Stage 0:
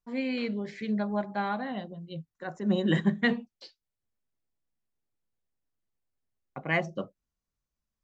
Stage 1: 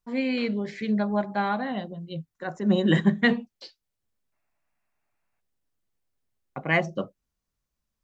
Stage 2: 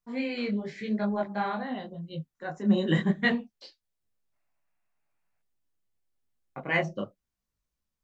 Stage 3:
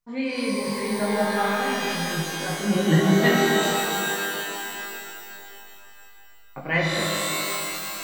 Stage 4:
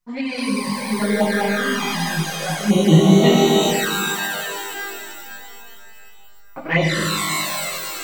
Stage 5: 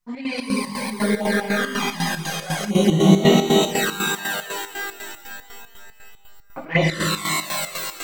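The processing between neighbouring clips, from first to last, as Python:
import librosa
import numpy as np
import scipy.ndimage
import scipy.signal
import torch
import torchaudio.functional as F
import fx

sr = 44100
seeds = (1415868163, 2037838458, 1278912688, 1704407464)

y1 = fx.spec_box(x, sr, start_s=4.33, length_s=1.08, low_hz=580.0, high_hz=2800.0, gain_db=11)
y1 = y1 * 10.0 ** (4.5 / 20.0)
y2 = fx.detune_double(y1, sr, cents=32)
y3 = fx.rev_shimmer(y2, sr, seeds[0], rt60_s=3.0, semitones=12, shimmer_db=-2, drr_db=-0.5)
y3 = y3 * 10.0 ** (2.0 / 20.0)
y4 = fx.env_flanger(y3, sr, rest_ms=5.5, full_db=-18.0)
y4 = y4 * 10.0 ** (7.0 / 20.0)
y5 = fx.chopper(y4, sr, hz=4.0, depth_pct=65, duty_pct=60)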